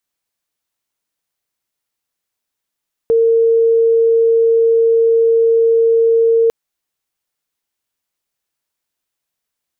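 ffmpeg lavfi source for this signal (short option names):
-f lavfi -i "sine=f=457:d=3.4:r=44100,volume=9.56dB"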